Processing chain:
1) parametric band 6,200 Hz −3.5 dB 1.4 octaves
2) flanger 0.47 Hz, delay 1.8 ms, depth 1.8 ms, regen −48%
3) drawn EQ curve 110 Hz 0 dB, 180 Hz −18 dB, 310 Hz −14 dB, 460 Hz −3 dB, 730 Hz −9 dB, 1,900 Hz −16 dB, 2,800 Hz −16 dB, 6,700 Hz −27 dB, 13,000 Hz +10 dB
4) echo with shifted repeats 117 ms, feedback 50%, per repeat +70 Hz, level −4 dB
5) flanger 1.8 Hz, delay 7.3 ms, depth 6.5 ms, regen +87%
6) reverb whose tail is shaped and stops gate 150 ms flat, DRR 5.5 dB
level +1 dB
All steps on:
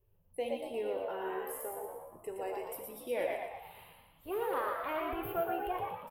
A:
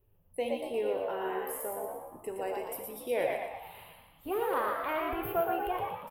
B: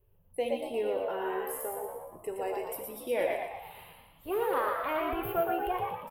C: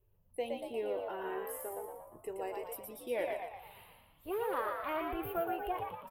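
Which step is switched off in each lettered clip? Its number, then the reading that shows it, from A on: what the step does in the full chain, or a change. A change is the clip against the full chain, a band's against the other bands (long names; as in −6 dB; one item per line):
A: 2, change in integrated loudness +3.5 LU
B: 5, change in integrated loudness +4.5 LU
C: 6, change in integrated loudness −1.0 LU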